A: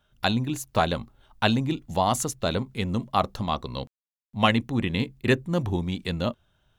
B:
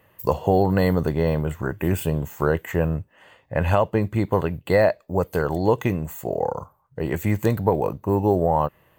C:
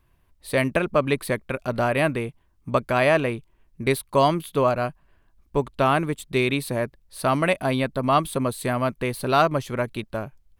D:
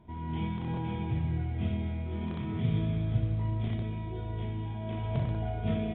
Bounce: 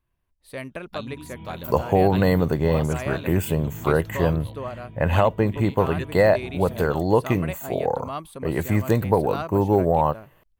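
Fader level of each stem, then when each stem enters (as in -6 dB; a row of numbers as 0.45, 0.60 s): -12.5, +0.5, -12.5, -8.5 dB; 0.70, 1.45, 0.00, 1.00 s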